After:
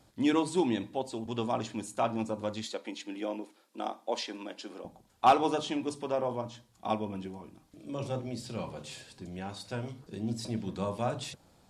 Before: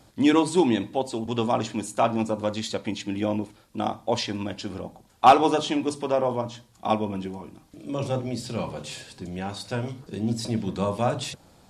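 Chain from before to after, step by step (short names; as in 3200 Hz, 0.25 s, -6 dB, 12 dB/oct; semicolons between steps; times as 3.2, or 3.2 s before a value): 2.66–4.85 HPF 270 Hz 24 dB/oct; gain -7.5 dB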